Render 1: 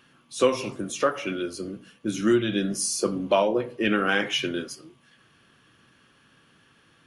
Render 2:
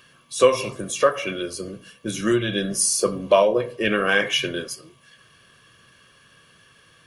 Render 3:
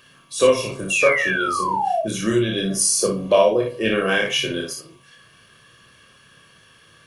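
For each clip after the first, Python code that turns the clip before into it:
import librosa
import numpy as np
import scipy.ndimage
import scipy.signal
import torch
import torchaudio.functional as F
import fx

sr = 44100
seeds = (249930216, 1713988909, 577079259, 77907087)

y1 = fx.high_shelf(x, sr, hz=3700.0, db=7.0)
y1 = y1 + 0.53 * np.pad(y1, (int(1.8 * sr / 1000.0), 0))[:len(y1)]
y1 = fx.dynamic_eq(y1, sr, hz=5600.0, q=0.73, threshold_db=-39.0, ratio=4.0, max_db=-4)
y1 = y1 * librosa.db_to_amplitude(2.5)
y2 = fx.spec_paint(y1, sr, seeds[0], shape='fall', start_s=0.9, length_s=1.12, low_hz=630.0, high_hz=2800.0, level_db=-21.0)
y2 = fx.dynamic_eq(y2, sr, hz=1300.0, q=0.96, threshold_db=-34.0, ratio=4.0, max_db=-5)
y2 = fx.room_early_taps(y2, sr, ms=(27, 58), db=(-3.5, -4.5))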